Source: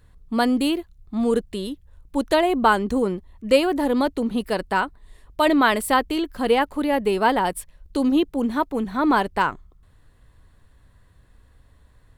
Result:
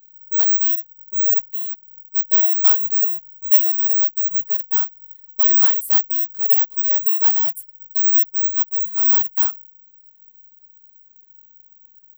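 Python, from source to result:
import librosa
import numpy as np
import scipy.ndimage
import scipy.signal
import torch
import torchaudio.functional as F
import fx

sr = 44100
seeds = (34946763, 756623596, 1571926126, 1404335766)

y = (np.kron(scipy.signal.resample_poly(x, 1, 2), np.eye(2)[0]) * 2)[:len(x)]
y = fx.riaa(y, sr, side='recording')
y = y * librosa.db_to_amplitude(-17.0)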